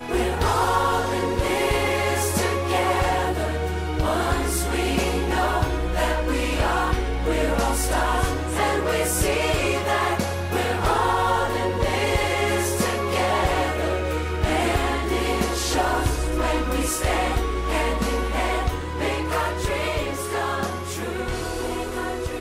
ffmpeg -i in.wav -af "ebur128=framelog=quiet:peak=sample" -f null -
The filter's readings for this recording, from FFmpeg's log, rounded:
Integrated loudness:
  I:         -23.1 LUFS
  Threshold: -33.1 LUFS
Loudness range:
  LRA:         2.7 LU
  Threshold: -43.1 LUFS
  LRA low:   -24.7 LUFS
  LRA high:  -22.0 LUFS
Sample peak:
  Peak:      -10.4 dBFS